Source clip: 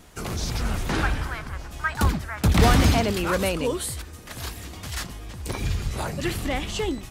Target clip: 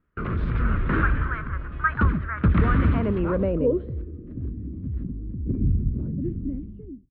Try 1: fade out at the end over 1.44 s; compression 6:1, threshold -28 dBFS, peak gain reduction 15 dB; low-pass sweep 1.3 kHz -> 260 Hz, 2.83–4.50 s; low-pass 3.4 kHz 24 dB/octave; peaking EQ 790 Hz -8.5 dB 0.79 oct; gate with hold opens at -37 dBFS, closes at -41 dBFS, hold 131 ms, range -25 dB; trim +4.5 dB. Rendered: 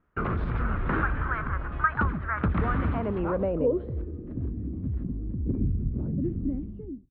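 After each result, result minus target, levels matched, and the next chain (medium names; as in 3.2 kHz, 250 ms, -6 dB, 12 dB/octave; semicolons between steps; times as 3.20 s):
compression: peak gain reduction +7.5 dB; 1 kHz band +3.5 dB
fade out at the end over 1.44 s; compression 6:1, threshold -19 dBFS, peak gain reduction 7.5 dB; low-pass sweep 1.3 kHz -> 260 Hz, 2.83–4.50 s; low-pass 3.4 kHz 24 dB/octave; peaking EQ 790 Hz -8.5 dB 0.79 oct; gate with hold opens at -37 dBFS, closes at -41 dBFS, hold 131 ms, range -25 dB; trim +4.5 dB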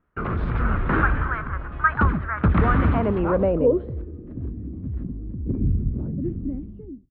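1 kHz band +3.0 dB
fade out at the end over 1.44 s; compression 6:1, threshold -19 dBFS, peak gain reduction 7.5 dB; low-pass sweep 1.3 kHz -> 260 Hz, 2.83–4.50 s; low-pass 3.4 kHz 24 dB/octave; peaking EQ 790 Hz -20.5 dB 0.79 oct; gate with hold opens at -37 dBFS, closes at -41 dBFS, hold 131 ms, range -25 dB; trim +4.5 dB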